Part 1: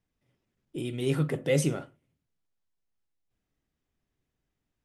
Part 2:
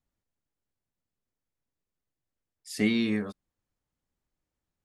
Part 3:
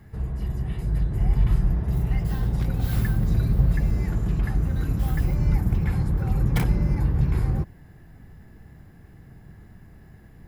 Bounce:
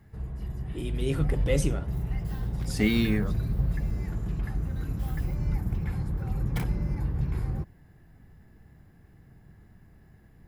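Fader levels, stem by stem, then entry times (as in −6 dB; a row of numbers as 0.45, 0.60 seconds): −2.0, +1.0, −7.0 decibels; 0.00, 0.00, 0.00 seconds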